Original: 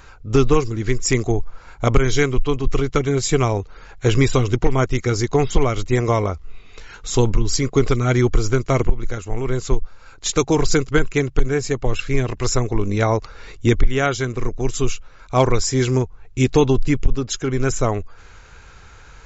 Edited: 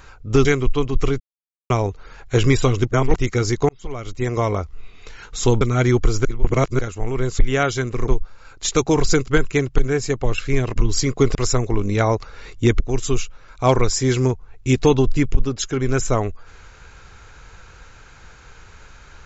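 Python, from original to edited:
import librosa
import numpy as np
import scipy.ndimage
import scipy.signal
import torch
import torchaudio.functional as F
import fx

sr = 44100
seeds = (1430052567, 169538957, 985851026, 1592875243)

y = fx.edit(x, sr, fx.cut(start_s=0.45, length_s=1.71),
    fx.silence(start_s=2.91, length_s=0.5),
    fx.reverse_span(start_s=4.62, length_s=0.25),
    fx.fade_in_span(start_s=5.4, length_s=0.94),
    fx.move(start_s=7.32, length_s=0.59, to_s=12.37),
    fx.reverse_span(start_s=8.55, length_s=0.54),
    fx.move(start_s=13.82, length_s=0.69, to_s=9.69), tone=tone)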